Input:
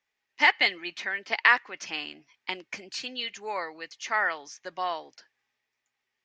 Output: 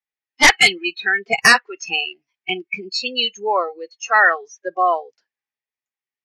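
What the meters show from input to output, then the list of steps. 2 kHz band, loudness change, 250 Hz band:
+9.5 dB, +10.5 dB, +12.5 dB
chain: sine folder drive 11 dB, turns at -4.5 dBFS; spectral noise reduction 29 dB

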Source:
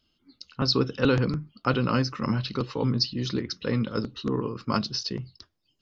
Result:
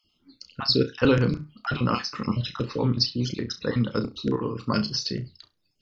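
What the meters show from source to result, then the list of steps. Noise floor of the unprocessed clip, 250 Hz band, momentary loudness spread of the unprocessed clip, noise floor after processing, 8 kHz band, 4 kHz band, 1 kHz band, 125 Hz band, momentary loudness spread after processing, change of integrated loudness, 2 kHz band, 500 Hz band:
-73 dBFS, +1.0 dB, 7 LU, -72 dBFS, no reading, +2.0 dB, 0.0 dB, +1.0 dB, 10 LU, +1.5 dB, +1.0 dB, +1.5 dB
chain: random holes in the spectrogram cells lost 30%; flutter echo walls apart 5.7 m, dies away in 0.21 s; trim +2 dB

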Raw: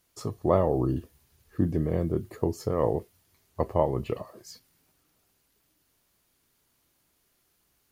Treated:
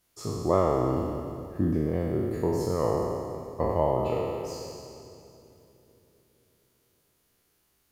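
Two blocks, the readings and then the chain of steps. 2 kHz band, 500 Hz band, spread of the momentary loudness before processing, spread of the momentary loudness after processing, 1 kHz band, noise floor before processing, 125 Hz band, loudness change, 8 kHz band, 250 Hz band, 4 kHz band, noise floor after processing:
+3.0 dB, +1.5 dB, 14 LU, 12 LU, +2.5 dB, -71 dBFS, -0.5 dB, 0.0 dB, +4.5 dB, +1.0 dB, +4.5 dB, -71 dBFS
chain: spectral sustain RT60 2.09 s; on a send: two-band feedback delay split 420 Hz, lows 453 ms, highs 278 ms, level -16 dB; on the sum: trim -3.5 dB

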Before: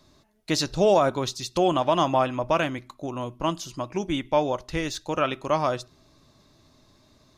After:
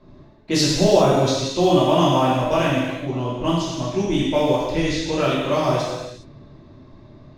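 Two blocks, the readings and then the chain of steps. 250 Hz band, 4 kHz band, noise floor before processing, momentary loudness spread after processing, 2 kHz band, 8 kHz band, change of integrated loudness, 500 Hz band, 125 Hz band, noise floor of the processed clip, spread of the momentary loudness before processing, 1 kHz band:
+8.5 dB, +7.0 dB, -60 dBFS, 9 LU, +4.5 dB, +6.5 dB, +5.5 dB, +5.0 dB, +10.0 dB, -47 dBFS, 11 LU, +3.0 dB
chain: companding laws mixed up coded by mu; level-controlled noise filter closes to 1.5 kHz, open at -19.5 dBFS; peaking EQ 1.2 kHz -7 dB 1.3 oct; gated-style reverb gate 440 ms falling, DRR -7.5 dB; trim -1 dB

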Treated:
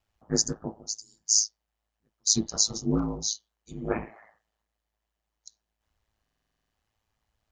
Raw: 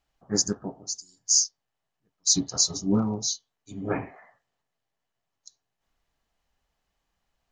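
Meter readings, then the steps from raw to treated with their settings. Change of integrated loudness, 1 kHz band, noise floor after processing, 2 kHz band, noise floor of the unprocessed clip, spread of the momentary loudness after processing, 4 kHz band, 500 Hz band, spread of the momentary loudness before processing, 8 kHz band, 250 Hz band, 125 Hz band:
-1.5 dB, -2.0 dB, -84 dBFS, -1.5 dB, -83 dBFS, 14 LU, -1.5 dB, -1.0 dB, 14 LU, -1.5 dB, -2.5 dB, -1.0 dB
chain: ring modulator 54 Hz; buffer glitch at 6.22 s, samples 2048, times 10; trim +1.5 dB

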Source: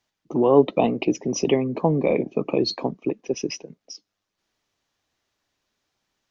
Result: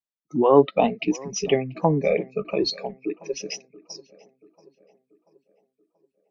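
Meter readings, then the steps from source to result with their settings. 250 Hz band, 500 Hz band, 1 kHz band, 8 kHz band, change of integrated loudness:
-2.5 dB, -0.5 dB, +2.0 dB, no reading, -0.5 dB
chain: spectral noise reduction 25 dB; dynamic bell 1.3 kHz, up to +6 dB, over -37 dBFS, Q 1.2; tape echo 684 ms, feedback 53%, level -20.5 dB, low-pass 2 kHz

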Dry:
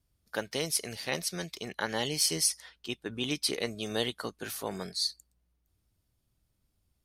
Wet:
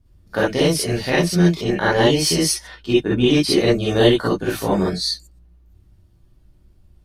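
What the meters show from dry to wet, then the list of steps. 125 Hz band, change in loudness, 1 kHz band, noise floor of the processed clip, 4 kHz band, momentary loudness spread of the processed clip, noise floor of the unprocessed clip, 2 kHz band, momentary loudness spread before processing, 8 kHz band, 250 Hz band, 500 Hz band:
+21.5 dB, +13.5 dB, +15.0 dB, -54 dBFS, +9.5 dB, 7 LU, -78 dBFS, +13.0 dB, 11 LU, +6.0 dB, +20.5 dB, +18.5 dB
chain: tilt EQ -3 dB/octave; gated-style reverb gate 80 ms rising, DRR -7.5 dB; trim +7 dB

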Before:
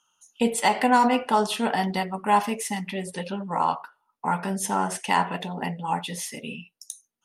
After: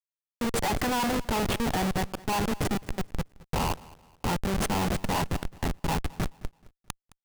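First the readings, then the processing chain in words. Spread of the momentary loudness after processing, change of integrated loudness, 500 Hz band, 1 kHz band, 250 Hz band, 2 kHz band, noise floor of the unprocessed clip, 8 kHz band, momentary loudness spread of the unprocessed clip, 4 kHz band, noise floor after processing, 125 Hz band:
10 LU, -4.5 dB, -4.0 dB, -8.0 dB, -3.0 dB, -4.5 dB, -77 dBFS, -4.0 dB, 13 LU, -2.0 dB, under -85 dBFS, +3.5 dB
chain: de-hum 66.39 Hz, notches 9; Schmitt trigger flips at -24.5 dBFS; on a send: feedback delay 215 ms, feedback 35%, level -21.5 dB

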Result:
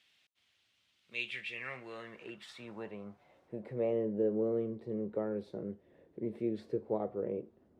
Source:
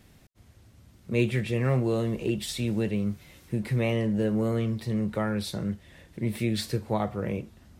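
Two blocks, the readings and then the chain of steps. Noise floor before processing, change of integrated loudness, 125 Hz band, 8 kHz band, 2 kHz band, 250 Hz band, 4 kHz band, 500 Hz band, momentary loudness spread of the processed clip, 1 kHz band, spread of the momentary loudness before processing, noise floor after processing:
-57 dBFS, -8.5 dB, -20.5 dB, under -20 dB, -6.5 dB, -11.0 dB, -12.0 dB, -4.5 dB, 16 LU, -11.0 dB, 8 LU, -75 dBFS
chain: band-pass sweep 3.1 kHz -> 420 Hz, 1.22–4.05 s

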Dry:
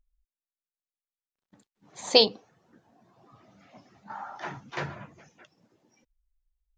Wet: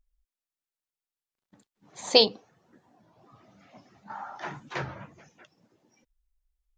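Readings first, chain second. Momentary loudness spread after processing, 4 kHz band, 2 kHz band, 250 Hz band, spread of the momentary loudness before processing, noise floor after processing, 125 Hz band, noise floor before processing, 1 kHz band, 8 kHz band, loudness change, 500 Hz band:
21 LU, 0.0 dB, 0.0 dB, 0.0 dB, 21 LU, under -85 dBFS, +0.5 dB, under -85 dBFS, 0.0 dB, 0.0 dB, 0.0 dB, 0.0 dB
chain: warped record 33 1/3 rpm, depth 160 cents

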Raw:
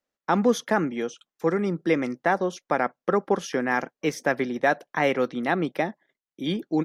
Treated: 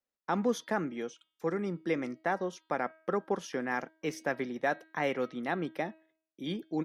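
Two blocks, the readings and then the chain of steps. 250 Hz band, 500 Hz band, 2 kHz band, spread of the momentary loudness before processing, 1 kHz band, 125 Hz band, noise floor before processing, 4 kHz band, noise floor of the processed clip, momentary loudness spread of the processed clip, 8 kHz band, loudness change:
-8.5 dB, -8.5 dB, -8.5 dB, 7 LU, -8.5 dB, -8.5 dB, under -85 dBFS, -8.5 dB, under -85 dBFS, 7 LU, -8.5 dB, -8.5 dB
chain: de-hum 318.7 Hz, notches 15; trim -8.5 dB

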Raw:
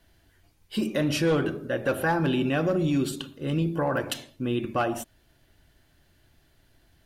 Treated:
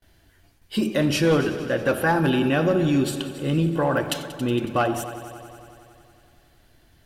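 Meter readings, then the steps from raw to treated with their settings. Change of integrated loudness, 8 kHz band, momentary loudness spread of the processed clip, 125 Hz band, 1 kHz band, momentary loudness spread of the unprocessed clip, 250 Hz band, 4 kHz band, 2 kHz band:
+4.5 dB, +4.5 dB, 10 LU, +4.0 dB, +4.5 dB, 9 LU, +4.0 dB, +4.5 dB, +4.5 dB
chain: gate with hold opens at -54 dBFS; on a send: multi-head delay 92 ms, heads all three, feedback 62%, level -18.5 dB; on the sum: trim +4 dB

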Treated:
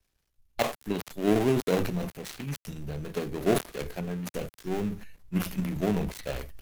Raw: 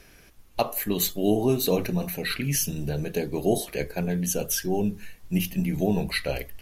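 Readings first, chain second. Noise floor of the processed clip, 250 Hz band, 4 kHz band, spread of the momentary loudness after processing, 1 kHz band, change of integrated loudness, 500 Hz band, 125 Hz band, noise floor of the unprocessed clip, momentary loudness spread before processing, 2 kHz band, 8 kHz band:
-78 dBFS, -3.0 dB, -8.0 dB, 12 LU, -2.0 dB, -4.0 dB, -2.5 dB, -4.0 dB, -53 dBFS, 7 LU, -4.5 dB, -12.5 dB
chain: dead-time distortion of 0.26 ms; transient shaper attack +2 dB, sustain +8 dB; three bands expanded up and down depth 70%; trim -5 dB

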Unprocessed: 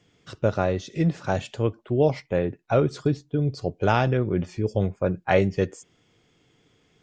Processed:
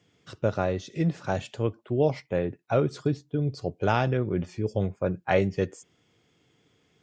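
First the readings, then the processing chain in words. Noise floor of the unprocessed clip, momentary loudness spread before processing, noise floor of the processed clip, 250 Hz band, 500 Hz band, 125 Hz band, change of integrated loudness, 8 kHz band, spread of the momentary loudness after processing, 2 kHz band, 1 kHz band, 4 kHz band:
-65 dBFS, 6 LU, -68 dBFS, -3.0 dB, -3.0 dB, -3.0 dB, -3.0 dB, no reading, 6 LU, -3.0 dB, -3.0 dB, -3.0 dB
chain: high-pass 57 Hz; trim -3 dB

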